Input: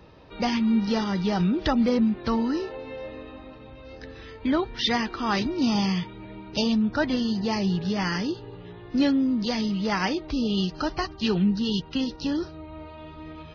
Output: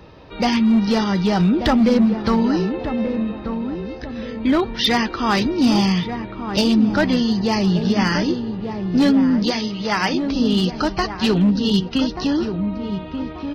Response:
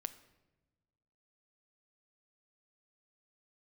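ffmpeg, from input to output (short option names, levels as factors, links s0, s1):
-filter_complex "[0:a]asettb=1/sr,asplit=3[s0][s1][s2];[s0]atrim=end=9.504[s3];[s1]atrim=start=9.5:end=10.35,asetpts=PTS-STARTPTS,afade=t=in:d=0.004:c=qsin,afade=t=out:st=0.846:d=0.004:c=qsin,lowshelf=f=270:g=-10[s4];[s2]atrim=start=10.346[s5];[s3][s4]acrossfade=d=0.004:c1=hsin:c2=qsin[s6];[s6][s5]acrossfade=d=0.004:c1=qsin:c2=hsin,volume=7.94,asoftclip=hard,volume=0.126,asplit=2[s7][s8];[s8]adelay=1184,lowpass=f=910:p=1,volume=0.447,asplit=2[s9][s10];[s10]adelay=1184,lowpass=f=910:p=1,volume=0.39,asplit=2[s11][s12];[s12]adelay=1184,lowpass=f=910:p=1,volume=0.39,asplit=2[s13][s14];[s14]adelay=1184,lowpass=f=910:p=1,volume=0.39,asplit=2[s15][s16];[s16]adelay=1184,lowpass=f=910:p=1,volume=0.39[s17];[s7][s9][s11][s13][s15][s17]amix=inputs=6:normalize=0,volume=2.24"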